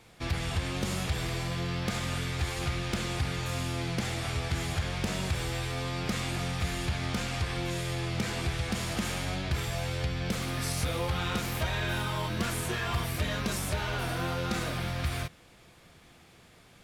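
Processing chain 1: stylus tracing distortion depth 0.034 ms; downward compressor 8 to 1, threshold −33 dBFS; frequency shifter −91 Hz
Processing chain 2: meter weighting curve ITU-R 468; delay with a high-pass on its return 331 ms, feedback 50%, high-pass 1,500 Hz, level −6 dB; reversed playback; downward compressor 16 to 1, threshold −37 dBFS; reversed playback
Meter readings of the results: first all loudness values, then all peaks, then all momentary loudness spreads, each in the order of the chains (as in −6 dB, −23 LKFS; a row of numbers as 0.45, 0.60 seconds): −38.5, −38.0 LKFS; −22.5, −24.0 dBFS; 3, 1 LU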